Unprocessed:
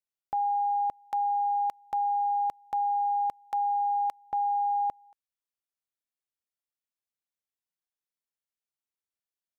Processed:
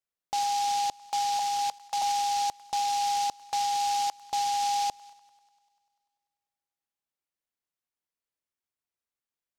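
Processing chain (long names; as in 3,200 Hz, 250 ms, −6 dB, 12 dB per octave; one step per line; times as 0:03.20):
0:01.39–0:02.02: Chebyshev high-pass filter 480 Hz, order 4
delay with a high-pass on its return 98 ms, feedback 73%, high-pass 1,400 Hz, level −13.5 dB
short delay modulated by noise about 4,500 Hz, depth 0.067 ms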